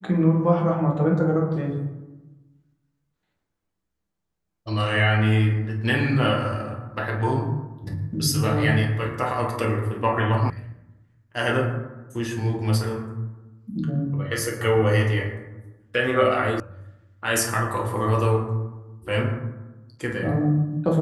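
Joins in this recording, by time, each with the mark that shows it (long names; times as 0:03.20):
0:10.50: cut off before it has died away
0:16.60: cut off before it has died away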